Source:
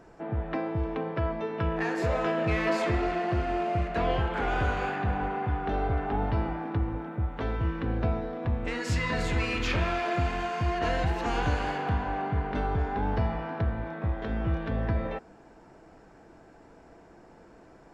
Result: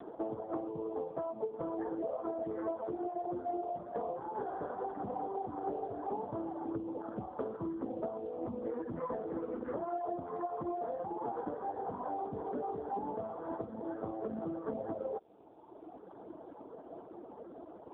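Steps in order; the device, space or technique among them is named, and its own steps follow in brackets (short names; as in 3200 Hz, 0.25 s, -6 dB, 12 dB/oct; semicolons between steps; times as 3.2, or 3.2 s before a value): Bessel low-pass 730 Hz, order 8; reverb removal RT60 1.8 s; dynamic EQ 470 Hz, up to +3 dB, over -44 dBFS, Q 0.84; voicemail (BPF 320–2900 Hz; compressor 8:1, threshold -48 dBFS, peak gain reduction 21.5 dB; gain +14 dB; AMR-NB 5.15 kbps 8000 Hz)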